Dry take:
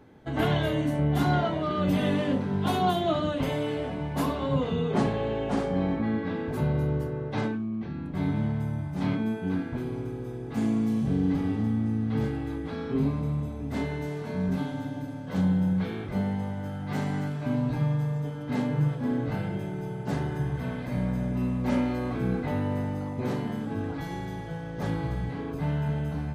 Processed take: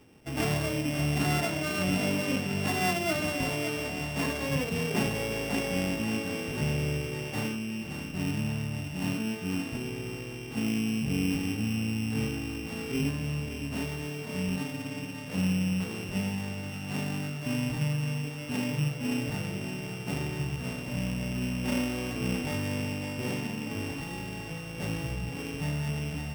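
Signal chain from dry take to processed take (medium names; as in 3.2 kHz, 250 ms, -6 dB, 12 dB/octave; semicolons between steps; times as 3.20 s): sorted samples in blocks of 16 samples; thinning echo 570 ms, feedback 53%, level -8 dB; trim -3.5 dB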